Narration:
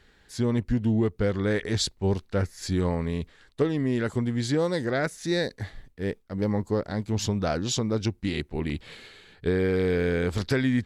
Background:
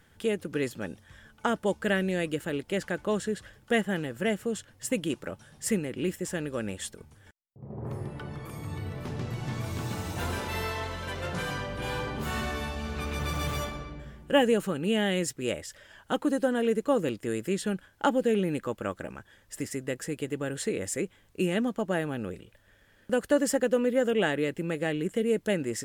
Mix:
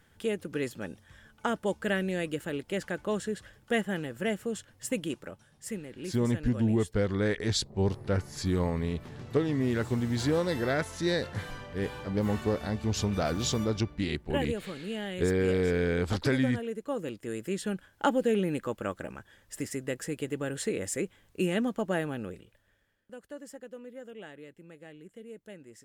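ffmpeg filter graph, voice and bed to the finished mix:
-filter_complex "[0:a]adelay=5750,volume=-2.5dB[a];[1:a]volume=6dB,afade=t=out:st=4.99:d=0.52:silence=0.446684,afade=t=in:st=16.8:d=1.21:silence=0.375837,afade=t=out:st=22:d=1.04:silence=0.11885[b];[a][b]amix=inputs=2:normalize=0"

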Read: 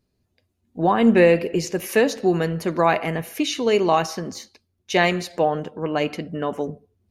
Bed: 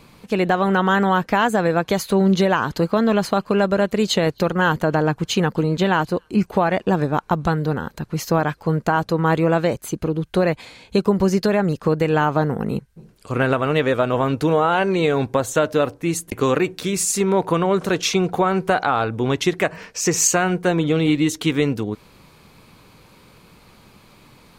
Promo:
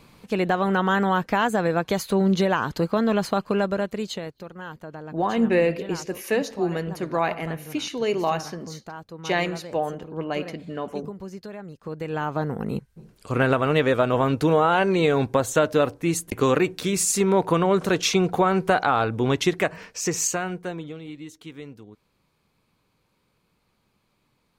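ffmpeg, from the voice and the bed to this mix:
-filter_complex "[0:a]adelay=4350,volume=-5.5dB[a];[1:a]volume=14dB,afade=t=out:st=3.48:d=0.88:silence=0.16788,afade=t=in:st=11.77:d=1.4:silence=0.125893,afade=t=out:st=19.34:d=1.65:silence=0.112202[b];[a][b]amix=inputs=2:normalize=0"

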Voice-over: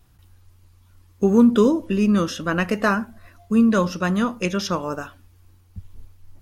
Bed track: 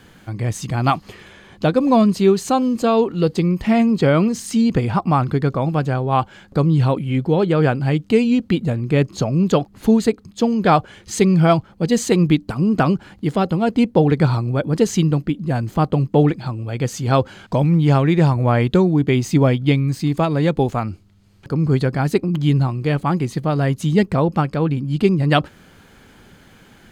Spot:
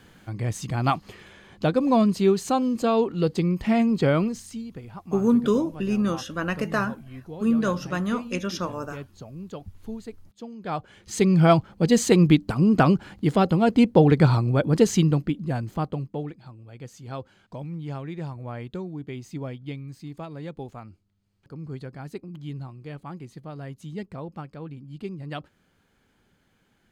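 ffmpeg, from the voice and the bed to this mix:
-filter_complex "[0:a]adelay=3900,volume=-5.5dB[a];[1:a]volume=14.5dB,afade=t=out:st=4.1:d=0.54:silence=0.158489,afade=t=in:st=10.62:d=0.99:silence=0.1,afade=t=out:st=14.76:d=1.48:silence=0.133352[b];[a][b]amix=inputs=2:normalize=0"

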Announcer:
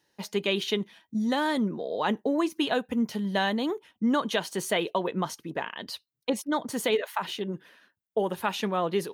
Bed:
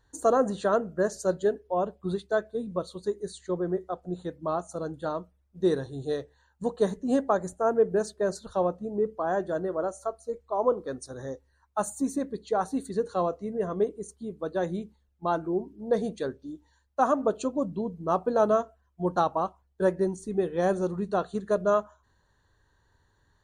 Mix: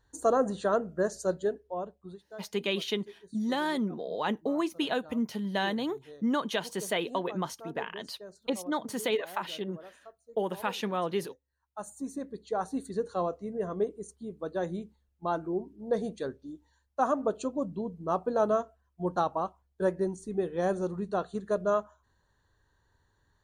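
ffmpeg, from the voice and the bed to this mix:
-filter_complex "[0:a]adelay=2200,volume=-3.5dB[a];[1:a]volume=13.5dB,afade=t=out:st=1.23:d=0.98:silence=0.141254,afade=t=in:st=11.44:d=1.33:silence=0.158489[b];[a][b]amix=inputs=2:normalize=0"

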